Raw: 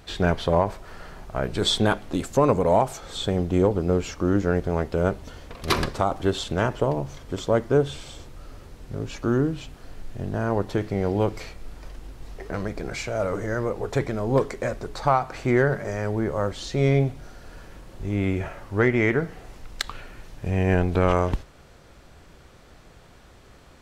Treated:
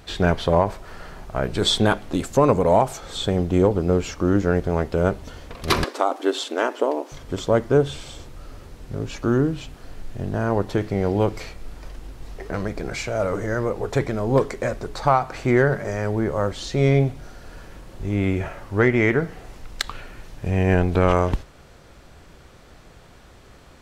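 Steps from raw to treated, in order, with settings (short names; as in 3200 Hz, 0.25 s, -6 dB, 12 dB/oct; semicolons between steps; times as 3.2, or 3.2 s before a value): 5.84–7.12 brick-wall FIR high-pass 240 Hz; gain +2.5 dB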